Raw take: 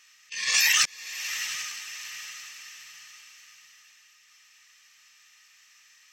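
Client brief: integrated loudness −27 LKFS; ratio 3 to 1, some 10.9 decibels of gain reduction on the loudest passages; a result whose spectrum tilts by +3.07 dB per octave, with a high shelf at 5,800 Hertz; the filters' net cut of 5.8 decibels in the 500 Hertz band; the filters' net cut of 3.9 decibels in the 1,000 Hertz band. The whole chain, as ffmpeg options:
ffmpeg -i in.wav -af "equalizer=frequency=500:width_type=o:gain=-5.5,equalizer=frequency=1000:width_type=o:gain=-4.5,highshelf=frequency=5800:gain=3.5,acompressor=threshold=-32dB:ratio=3,volume=6.5dB" out.wav

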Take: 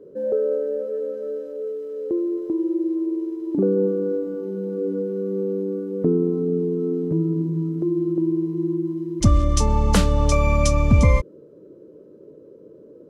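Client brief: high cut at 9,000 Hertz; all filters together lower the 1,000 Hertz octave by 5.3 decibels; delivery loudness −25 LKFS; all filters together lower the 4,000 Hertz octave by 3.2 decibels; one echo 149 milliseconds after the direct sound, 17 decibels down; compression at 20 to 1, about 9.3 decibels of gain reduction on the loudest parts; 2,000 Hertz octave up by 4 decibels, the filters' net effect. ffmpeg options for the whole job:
ffmpeg -i in.wav -af "lowpass=9000,equalizer=frequency=1000:width_type=o:gain=-8.5,equalizer=frequency=2000:width_type=o:gain=8.5,equalizer=frequency=4000:width_type=o:gain=-6.5,acompressor=threshold=-19dB:ratio=20,aecho=1:1:149:0.141,volume=1dB" out.wav

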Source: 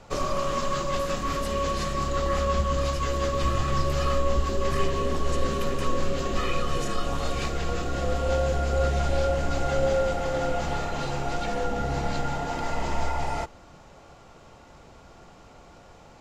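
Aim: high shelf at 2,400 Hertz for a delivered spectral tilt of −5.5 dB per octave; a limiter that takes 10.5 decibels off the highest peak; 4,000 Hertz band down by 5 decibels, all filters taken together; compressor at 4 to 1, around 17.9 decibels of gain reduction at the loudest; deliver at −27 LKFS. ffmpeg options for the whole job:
ffmpeg -i in.wav -af "highshelf=frequency=2400:gain=-3,equalizer=frequency=4000:width_type=o:gain=-4,acompressor=threshold=-41dB:ratio=4,volume=22dB,alimiter=limit=-17dB:level=0:latency=1" out.wav

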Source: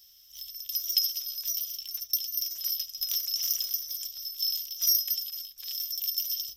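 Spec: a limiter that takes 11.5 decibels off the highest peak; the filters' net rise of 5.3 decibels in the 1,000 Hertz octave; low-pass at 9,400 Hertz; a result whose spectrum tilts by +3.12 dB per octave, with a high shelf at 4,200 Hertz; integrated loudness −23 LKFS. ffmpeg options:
ffmpeg -i in.wav -af "lowpass=9400,equalizer=frequency=1000:width_type=o:gain=7.5,highshelf=frequency=4200:gain=-8,volume=16.5dB,alimiter=limit=-13.5dB:level=0:latency=1" out.wav

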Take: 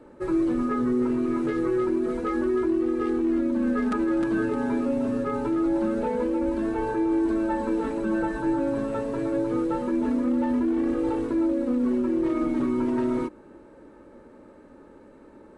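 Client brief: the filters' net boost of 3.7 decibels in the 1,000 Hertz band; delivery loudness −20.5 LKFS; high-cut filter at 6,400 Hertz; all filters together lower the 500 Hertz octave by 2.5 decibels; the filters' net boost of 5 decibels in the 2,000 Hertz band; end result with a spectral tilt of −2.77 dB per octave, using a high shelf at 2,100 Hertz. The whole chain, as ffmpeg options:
ffmpeg -i in.wav -af "lowpass=6400,equalizer=frequency=500:width_type=o:gain=-5,equalizer=frequency=1000:width_type=o:gain=4,equalizer=frequency=2000:width_type=o:gain=3.5,highshelf=frequency=2100:gain=3.5,volume=6dB" out.wav

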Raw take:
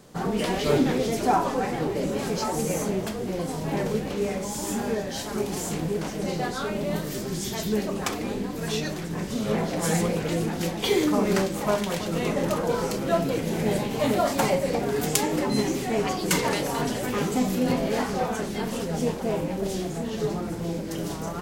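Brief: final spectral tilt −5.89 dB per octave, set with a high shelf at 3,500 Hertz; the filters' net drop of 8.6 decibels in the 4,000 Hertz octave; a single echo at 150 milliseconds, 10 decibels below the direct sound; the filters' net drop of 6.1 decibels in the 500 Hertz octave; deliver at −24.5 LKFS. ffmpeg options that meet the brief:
ffmpeg -i in.wav -af "equalizer=frequency=500:width_type=o:gain=-7.5,highshelf=frequency=3500:gain=-5.5,equalizer=frequency=4000:width_type=o:gain=-7.5,aecho=1:1:150:0.316,volume=5dB" out.wav

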